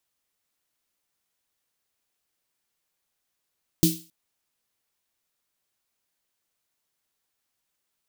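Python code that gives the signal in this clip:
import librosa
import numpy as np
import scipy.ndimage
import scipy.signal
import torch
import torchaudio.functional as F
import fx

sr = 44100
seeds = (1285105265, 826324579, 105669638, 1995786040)

y = fx.drum_snare(sr, seeds[0], length_s=0.27, hz=170.0, second_hz=320.0, noise_db=-5.0, noise_from_hz=3100.0, decay_s=0.29, noise_decay_s=0.37)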